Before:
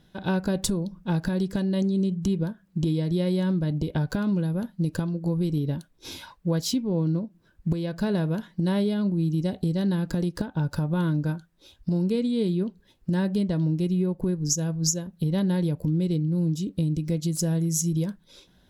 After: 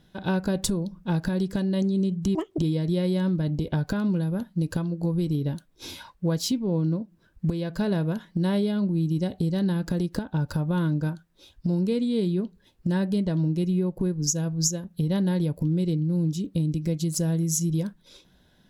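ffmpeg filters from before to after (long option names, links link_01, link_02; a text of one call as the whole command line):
ffmpeg -i in.wav -filter_complex "[0:a]asplit=3[link_01][link_02][link_03];[link_01]atrim=end=2.354[link_04];[link_02]atrim=start=2.35:end=2.81,asetpts=PTS-STARTPTS,asetrate=86877,aresample=44100,atrim=end_sample=10297,asetpts=PTS-STARTPTS[link_05];[link_03]atrim=start=2.806[link_06];[link_04][link_05]acrossfade=duration=0.004:curve1=hsin:curve2=hsin[link_07];[link_07][link_06]acrossfade=duration=0.004:curve1=hsin:curve2=hsin" out.wav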